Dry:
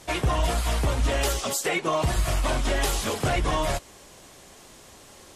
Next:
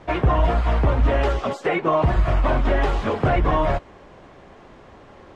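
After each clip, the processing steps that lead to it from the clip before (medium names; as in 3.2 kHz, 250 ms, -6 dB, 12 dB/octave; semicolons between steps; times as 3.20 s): low-pass 1.7 kHz 12 dB/octave; trim +6 dB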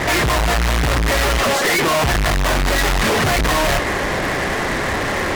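peaking EQ 1.9 kHz +12 dB 0.64 oct; fuzz box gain 45 dB, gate -52 dBFS; trim -2.5 dB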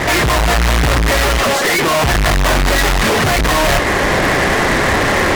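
gain riding 0.5 s; trim +4 dB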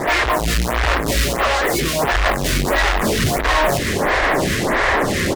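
on a send: delay 794 ms -9.5 dB; on the sum: lamp-driven phase shifter 1.5 Hz; trim -1 dB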